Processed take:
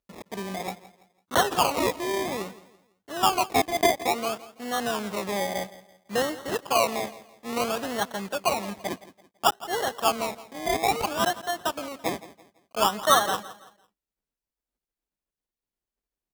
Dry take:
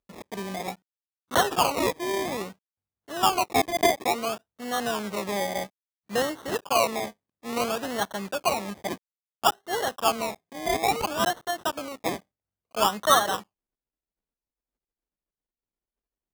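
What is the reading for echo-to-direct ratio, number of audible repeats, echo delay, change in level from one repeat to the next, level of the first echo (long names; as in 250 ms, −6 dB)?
−17.0 dB, 2, 167 ms, −9.0 dB, −17.5 dB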